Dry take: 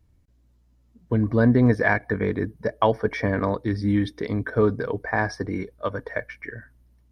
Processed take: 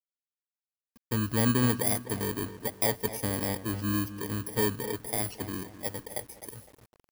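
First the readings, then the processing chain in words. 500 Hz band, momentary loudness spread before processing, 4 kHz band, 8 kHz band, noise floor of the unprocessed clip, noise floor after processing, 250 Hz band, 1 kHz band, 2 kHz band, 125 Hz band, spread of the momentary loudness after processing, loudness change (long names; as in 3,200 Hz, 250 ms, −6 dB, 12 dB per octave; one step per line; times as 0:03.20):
−10.0 dB, 13 LU, +4.0 dB, can't be measured, −61 dBFS, below −85 dBFS, −8.0 dB, −9.0 dB, −11.0 dB, −7.5 dB, 12 LU, −6.0 dB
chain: samples in bit-reversed order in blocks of 32 samples
feedback echo with a low-pass in the loop 255 ms, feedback 44%, low-pass 2,500 Hz, level −12 dB
bit reduction 8 bits
level −7.5 dB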